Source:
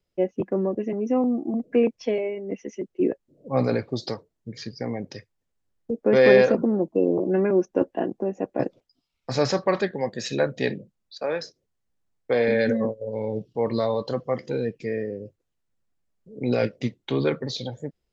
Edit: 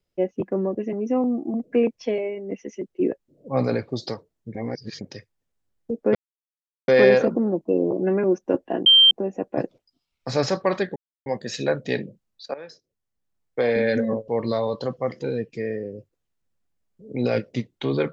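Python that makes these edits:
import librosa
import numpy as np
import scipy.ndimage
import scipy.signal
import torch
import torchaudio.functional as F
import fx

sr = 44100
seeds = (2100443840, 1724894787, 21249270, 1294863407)

y = fx.edit(x, sr, fx.reverse_span(start_s=4.55, length_s=0.46),
    fx.insert_silence(at_s=6.15, length_s=0.73),
    fx.insert_tone(at_s=8.13, length_s=0.25, hz=3150.0, db=-9.5),
    fx.insert_silence(at_s=9.98, length_s=0.3),
    fx.fade_in_from(start_s=11.26, length_s=1.05, floor_db=-14.5),
    fx.cut(start_s=13.0, length_s=0.55), tone=tone)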